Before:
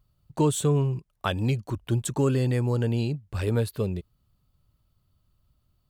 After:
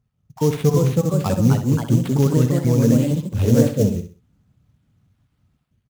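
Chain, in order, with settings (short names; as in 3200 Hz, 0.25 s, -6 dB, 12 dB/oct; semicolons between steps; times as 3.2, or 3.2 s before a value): random spectral dropouts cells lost 36%; HPF 82 Hz; tone controls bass +9 dB, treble -1 dB; AGC gain up to 7.5 dB; small resonant body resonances 230/450/750/3200 Hz, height 8 dB; sample-rate reducer 6300 Hz, jitter 20%; echoes that change speed 0.393 s, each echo +2 st, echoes 2; on a send: feedback echo 64 ms, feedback 30%, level -9.5 dB; on the sum: gain -6.5 dB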